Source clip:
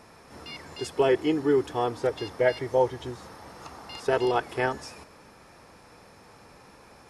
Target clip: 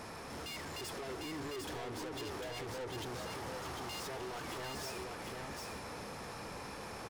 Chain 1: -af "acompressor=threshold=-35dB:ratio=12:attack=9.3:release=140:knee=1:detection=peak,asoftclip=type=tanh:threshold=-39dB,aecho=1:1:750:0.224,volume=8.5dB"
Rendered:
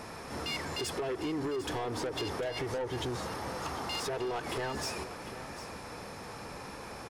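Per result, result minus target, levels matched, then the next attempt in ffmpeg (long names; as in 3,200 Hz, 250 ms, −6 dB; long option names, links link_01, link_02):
echo-to-direct −9.5 dB; soft clipping: distortion −7 dB
-af "acompressor=threshold=-35dB:ratio=12:attack=9.3:release=140:knee=1:detection=peak,asoftclip=type=tanh:threshold=-39dB,aecho=1:1:750:0.668,volume=8.5dB"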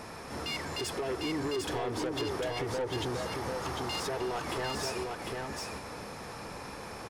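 soft clipping: distortion −7 dB
-af "acompressor=threshold=-35dB:ratio=12:attack=9.3:release=140:knee=1:detection=peak,asoftclip=type=tanh:threshold=-51dB,aecho=1:1:750:0.668,volume=8.5dB"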